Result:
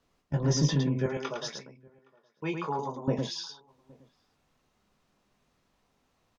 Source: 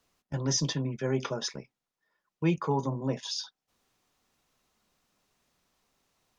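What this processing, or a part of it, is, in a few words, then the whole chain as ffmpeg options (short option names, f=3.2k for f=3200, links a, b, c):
slapback doubling: -filter_complex "[0:a]lowshelf=f=480:g=4,asettb=1/sr,asplit=3[a][b][c];[a]atrim=end=1.064[d];[b]atrim=start=1.06:end=3.08,asetpts=PTS-STARTPTS,afade=t=in:d=0.004:c=qsin,afade=t=out:st=2.016:d=0.004:c=qsin,highpass=f=870:p=1[e];[c]atrim=start=3.076[f];[d][e]acrossfade=d=0.004:c1=hsin:c2=qsin[g];[g][f]acrossfade=d=0.004:c1=qsin:c2=hsin,aemphasis=mode=reproduction:type=cd,asplit=3[h][i][j];[i]adelay=20,volume=-7.5dB[k];[j]adelay=108,volume=-5dB[l];[h][k][l]amix=inputs=3:normalize=0,asplit=2[m][n];[n]adelay=816.3,volume=-27dB,highshelf=f=4k:g=-18.4[o];[m][o]amix=inputs=2:normalize=0"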